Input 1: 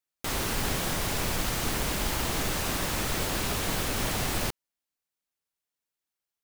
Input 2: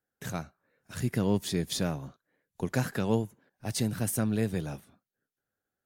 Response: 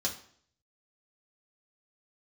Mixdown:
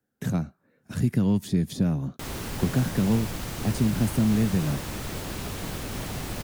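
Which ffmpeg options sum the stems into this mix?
-filter_complex "[0:a]adelay=1950,volume=0.447[s0];[1:a]equalizer=f=230:t=o:w=0.96:g=6.5,acrossover=split=180|880[s1][s2][s3];[s1]acompressor=threshold=0.0251:ratio=4[s4];[s2]acompressor=threshold=0.0158:ratio=4[s5];[s3]acompressor=threshold=0.00708:ratio=4[s6];[s4][s5][s6]amix=inputs=3:normalize=0,volume=1.33[s7];[s0][s7]amix=inputs=2:normalize=0,equalizer=f=130:w=0.35:g=7"

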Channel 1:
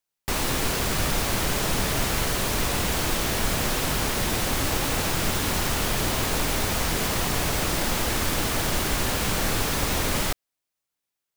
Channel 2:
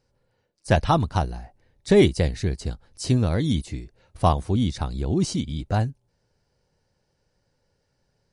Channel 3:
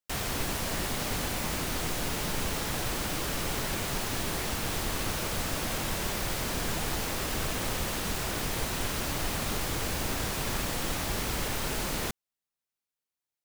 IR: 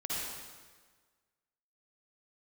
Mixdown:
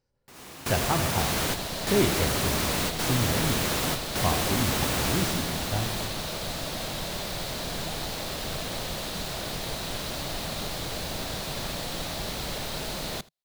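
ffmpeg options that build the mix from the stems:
-filter_complex "[0:a]highpass=100,volume=0.708,afade=t=out:st=5.16:d=0.32:silence=0.421697,asplit=2[s0][s1];[s1]volume=0.119[s2];[1:a]volume=0.335,asplit=3[s3][s4][s5];[s4]volume=0.335[s6];[2:a]equalizer=f=160:t=o:w=0.67:g=5,equalizer=f=630:t=o:w=0.67:g=7,equalizer=f=4000:t=o:w=0.67:g=9,adelay=1100,volume=0.631,asplit=2[s7][s8];[s8]volume=0.075[s9];[s5]apad=whole_len=501221[s10];[s0][s10]sidechaingate=range=0.0224:threshold=0.00158:ratio=16:detection=peak[s11];[3:a]atrim=start_sample=2205[s12];[s2][s6]amix=inputs=2:normalize=0[s13];[s13][s12]afir=irnorm=-1:irlink=0[s14];[s9]aecho=0:1:79:1[s15];[s11][s3][s7][s14][s15]amix=inputs=5:normalize=0"

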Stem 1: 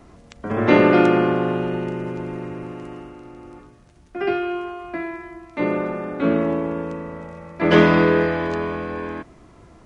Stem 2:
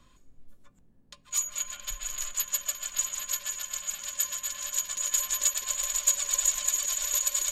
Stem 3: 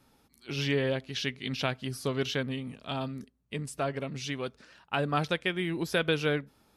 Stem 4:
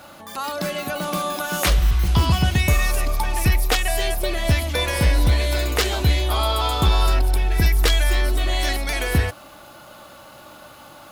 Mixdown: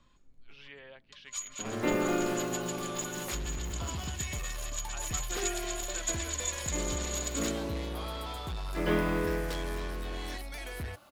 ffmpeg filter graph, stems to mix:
-filter_complex "[0:a]acrusher=bits=4:mix=0:aa=0.5,adelay=1150,volume=0.178[s0];[1:a]lowpass=6000,volume=0.562[s1];[2:a]acrossover=split=590 3700:gain=0.141 1 0.141[s2][s3][s4];[s2][s3][s4]amix=inputs=3:normalize=0,volume=0.178[s5];[3:a]asoftclip=type=tanh:threshold=0.126,adelay=1650,volume=0.178[s6];[s0][s1][s5][s6]amix=inputs=4:normalize=0"

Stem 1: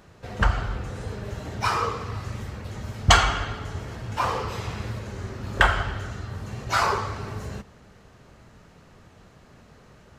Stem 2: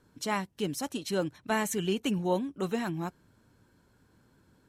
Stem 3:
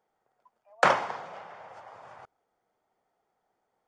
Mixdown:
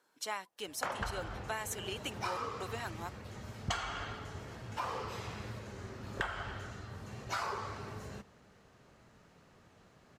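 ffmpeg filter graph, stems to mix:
-filter_complex "[0:a]lowshelf=f=89:g=-10,adelay=600,volume=0.376[s0];[1:a]highpass=630,volume=0.75[s1];[2:a]volume=0.355[s2];[s0][s1][s2]amix=inputs=3:normalize=0,acompressor=threshold=0.02:ratio=4"

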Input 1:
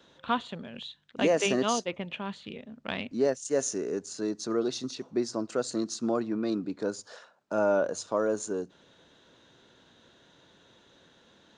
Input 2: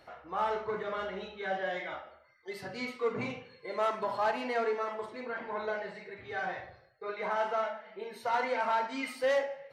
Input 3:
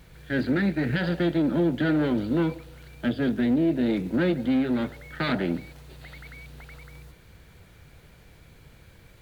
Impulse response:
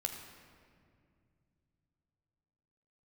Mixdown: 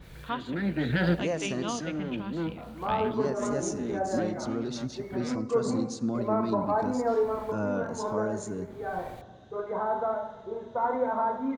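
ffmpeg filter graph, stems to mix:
-filter_complex "[0:a]asubboost=boost=10:cutoff=150,volume=0.447,asplit=3[s0][s1][s2];[s1]volume=0.335[s3];[1:a]lowpass=f=1200:w=0.5412,lowpass=f=1200:w=1.3066,equalizer=f=250:w=1.7:g=7.5,adelay=2500,volume=0.944,asplit=2[s4][s5];[s5]volume=0.562[s6];[2:a]adynamicequalizer=threshold=0.00562:dfrequency=2700:dqfactor=0.7:tfrequency=2700:tqfactor=0.7:attack=5:release=100:ratio=0.375:range=2.5:mode=cutabove:tftype=highshelf,volume=1.33,asplit=3[s7][s8][s9];[s7]atrim=end=5.36,asetpts=PTS-STARTPTS,afade=t=out:st=5.356:d=0.004:c=hsin[s10];[s8]atrim=start=5.36:end=6.14,asetpts=PTS-STARTPTS,volume=0[s11];[s9]atrim=start=6.14,asetpts=PTS-STARTPTS,afade=t=in:d=0.004:c=hsin[s12];[s10][s11][s12]concat=n=3:v=0:a=1[s13];[s2]apad=whole_len=406299[s14];[s13][s14]sidechaincompress=threshold=0.00398:ratio=8:attack=7.5:release=365[s15];[3:a]atrim=start_sample=2205[s16];[s3][s6]amix=inputs=2:normalize=0[s17];[s17][s16]afir=irnorm=-1:irlink=0[s18];[s0][s4][s15][s18]amix=inputs=4:normalize=0"

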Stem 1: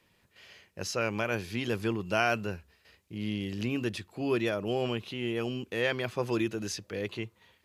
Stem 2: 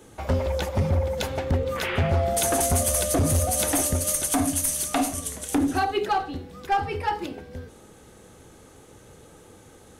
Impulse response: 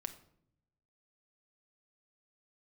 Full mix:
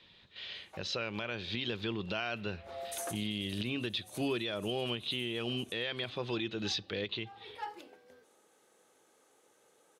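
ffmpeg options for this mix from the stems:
-filter_complex "[0:a]lowpass=f=3700:t=q:w=6.8,volume=1.12,asplit=3[s0][s1][s2];[s1]volume=0.237[s3];[1:a]highpass=440,adelay=550,volume=0.178,asplit=2[s4][s5];[s5]volume=0.133[s6];[s2]apad=whole_len=465060[s7];[s4][s7]sidechaincompress=threshold=0.00224:ratio=4:attack=16:release=129[s8];[2:a]atrim=start_sample=2205[s9];[s3][s6]amix=inputs=2:normalize=0[s10];[s10][s9]afir=irnorm=-1:irlink=0[s11];[s0][s8][s11]amix=inputs=3:normalize=0,alimiter=limit=0.0631:level=0:latency=1:release=352"

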